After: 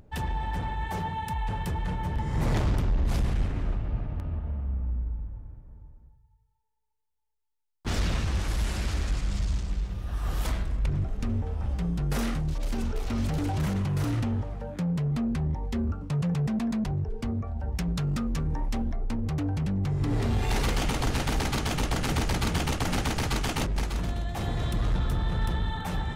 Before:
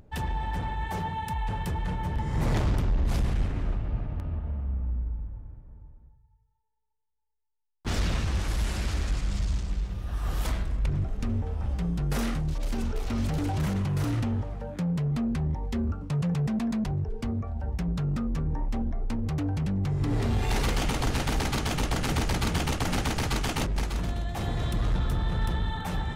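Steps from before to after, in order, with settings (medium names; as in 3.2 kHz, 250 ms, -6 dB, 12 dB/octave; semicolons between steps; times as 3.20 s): 17.75–18.96 s: treble shelf 2.1 kHz +9.5 dB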